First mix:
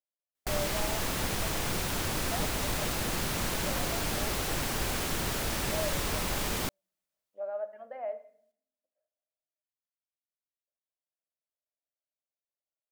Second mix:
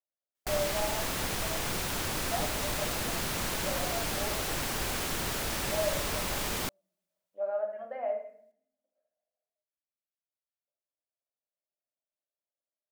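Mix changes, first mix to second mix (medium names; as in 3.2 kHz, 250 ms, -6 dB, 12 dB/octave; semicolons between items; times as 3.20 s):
speech: send +10.5 dB; background: add bass shelf 360 Hz -3.5 dB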